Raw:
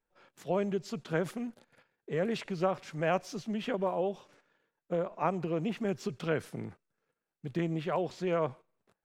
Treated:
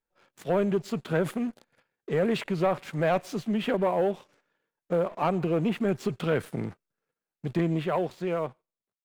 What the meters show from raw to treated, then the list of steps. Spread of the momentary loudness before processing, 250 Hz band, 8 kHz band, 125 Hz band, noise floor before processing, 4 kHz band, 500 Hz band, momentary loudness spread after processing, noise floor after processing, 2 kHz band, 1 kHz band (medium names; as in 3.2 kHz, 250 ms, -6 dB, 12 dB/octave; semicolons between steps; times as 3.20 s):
9 LU, +6.0 dB, no reading, +6.0 dB, under -85 dBFS, +4.5 dB, +5.5 dB, 9 LU, under -85 dBFS, +4.5 dB, +4.5 dB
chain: fade out at the end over 1.44 s; waveshaping leveller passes 2; dynamic bell 5.6 kHz, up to -8 dB, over -57 dBFS, Q 1.8